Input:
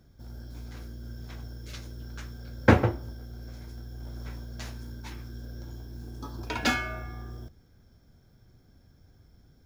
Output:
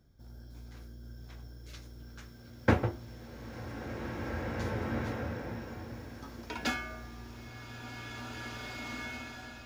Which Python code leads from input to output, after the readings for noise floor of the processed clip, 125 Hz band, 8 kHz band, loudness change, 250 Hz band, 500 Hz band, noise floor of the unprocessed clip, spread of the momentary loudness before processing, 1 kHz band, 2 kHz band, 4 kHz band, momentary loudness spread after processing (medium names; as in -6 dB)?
-51 dBFS, -5.0 dB, -4.5 dB, -4.5 dB, -4.5 dB, -4.5 dB, -60 dBFS, 18 LU, -4.5 dB, -4.5 dB, -4.5 dB, 16 LU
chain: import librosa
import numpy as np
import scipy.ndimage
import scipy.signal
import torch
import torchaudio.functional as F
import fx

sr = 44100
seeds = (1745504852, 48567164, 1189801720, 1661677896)

y = fx.rev_bloom(x, sr, seeds[0], attack_ms=2300, drr_db=1.0)
y = y * 10.0 ** (-7.0 / 20.0)